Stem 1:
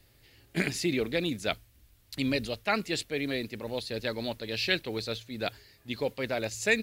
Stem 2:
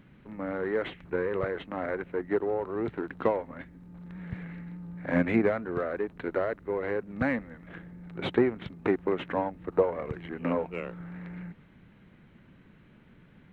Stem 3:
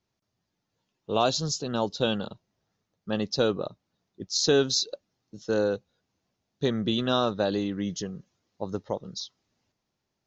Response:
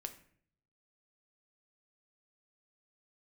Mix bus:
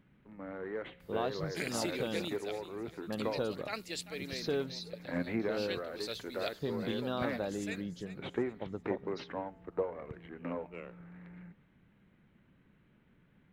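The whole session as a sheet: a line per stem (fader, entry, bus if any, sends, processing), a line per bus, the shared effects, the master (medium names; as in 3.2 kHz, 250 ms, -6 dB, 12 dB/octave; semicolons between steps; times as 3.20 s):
-6.5 dB, 1.00 s, no send, echo send -13.5 dB, tone controls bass -8 dB, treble +5 dB; random-step tremolo 2.2 Hz, depth 85%
-6.0 dB, 0.00 s, no send, no echo send, feedback comb 67 Hz, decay 1.2 s, harmonics all, mix 40%
-7.0 dB, 0.00 s, no send, no echo send, Gaussian low-pass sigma 2.2 samples; compression 1.5:1, threshold -31 dBFS, peak gain reduction 5 dB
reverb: none
echo: feedback delay 389 ms, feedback 39%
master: none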